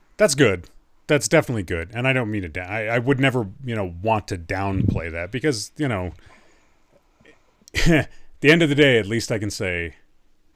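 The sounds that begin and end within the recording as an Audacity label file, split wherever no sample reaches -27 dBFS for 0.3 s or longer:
1.090000	6.100000	sound
7.680000	8.040000	sound
8.420000	9.880000	sound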